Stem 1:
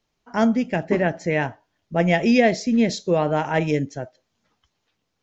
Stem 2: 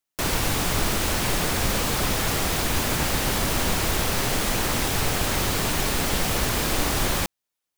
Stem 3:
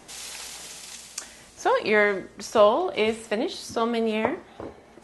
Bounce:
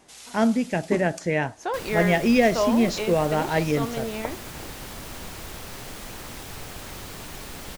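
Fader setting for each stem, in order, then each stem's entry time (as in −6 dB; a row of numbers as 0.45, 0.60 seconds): −2.0, −14.0, −6.5 decibels; 0.00, 1.55, 0.00 seconds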